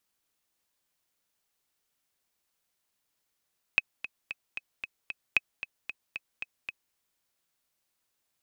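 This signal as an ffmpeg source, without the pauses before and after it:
ffmpeg -f lavfi -i "aevalsrc='pow(10,(-8.5-13.5*gte(mod(t,6*60/227),60/227))/20)*sin(2*PI*2550*mod(t,60/227))*exp(-6.91*mod(t,60/227)/0.03)':duration=3.17:sample_rate=44100" out.wav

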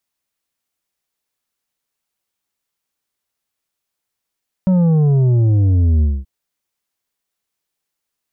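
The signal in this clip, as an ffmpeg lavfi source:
ffmpeg -f lavfi -i "aevalsrc='0.282*clip((1.58-t)/0.23,0,1)*tanh(2.24*sin(2*PI*190*1.58/log(65/190)*(exp(log(65/190)*t/1.58)-1)))/tanh(2.24)':duration=1.58:sample_rate=44100" out.wav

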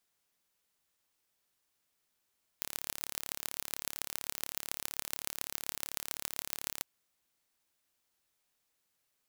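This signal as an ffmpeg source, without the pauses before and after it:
ffmpeg -f lavfi -i "aevalsrc='0.501*eq(mod(n,1232),0)*(0.5+0.5*eq(mod(n,6160),0))':duration=4.2:sample_rate=44100" out.wav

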